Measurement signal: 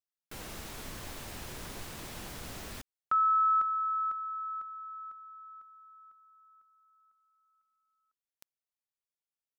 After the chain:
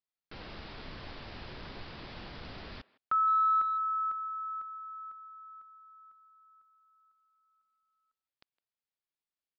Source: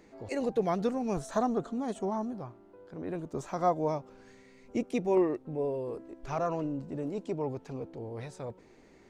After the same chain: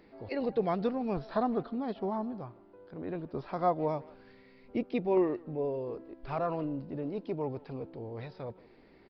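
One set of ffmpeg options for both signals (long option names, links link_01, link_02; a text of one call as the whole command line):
ffmpeg -i in.wav -filter_complex "[0:a]asplit=2[link_01][link_02];[link_02]adelay=160,highpass=300,lowpass=3400,asoftclip=type=hard:threshold=-25dB,volume=-21dB[link_03];[link_01][link_03]amix=inputs=2:normalize=0,aresample=11025,aresample=44100,volume=-1dB" out.wav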